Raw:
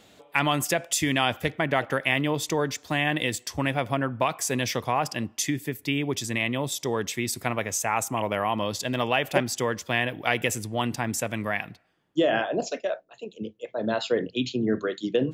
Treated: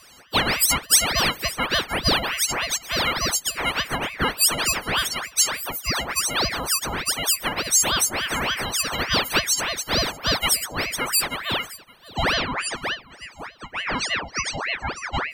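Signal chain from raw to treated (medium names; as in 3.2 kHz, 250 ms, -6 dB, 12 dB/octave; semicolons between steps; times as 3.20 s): partials quantised in pitch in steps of 6 st; thinning echo 563 ms, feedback 44%, high-pass 560 Hz, level -19 dB; ring modulator with a swept carrier 1.4 kHz, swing 75%, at 3.4 Hz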